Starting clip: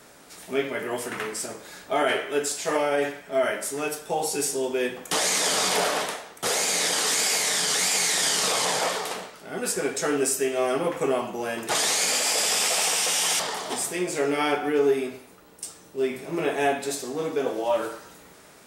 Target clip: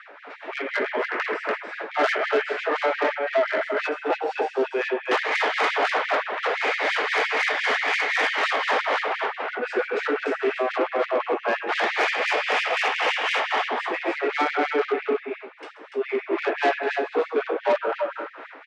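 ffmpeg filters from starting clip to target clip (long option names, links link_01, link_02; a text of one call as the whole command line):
ffmpeg -i in.wav -filter_complex "[0:a]lowpass=frequency=2400:width=0.5412,lowpass=frequency=2400:width=1.3066,lowshelf=frequency=170:gain=-10.5,asplit=2[link_01][link_02];[link_02]acompressor=threshold=-33dB:ratio=6,volume=2.5dB[link_03];[link_01][link_03]amix=inputs=2:normalize=0,aecho=1:1:134|290:0.299|0.596,tremolo=f=3.9:d=0.47,asoftclip=type=tanh:threshold=-21.5dB,afftfilt=real='re*gte(b*sr/1024,210*pow(1800/210,0.5+0.5*sin(2*PI*5.8*pts/sr)))':imag='im*gte(b*sr/1024,210*pow(1800/210,0.5+0.5*sin(2*PI*5.8*pts/sr)))':win_size=1024:overlap=0.75,volume=6.5dB" out.wav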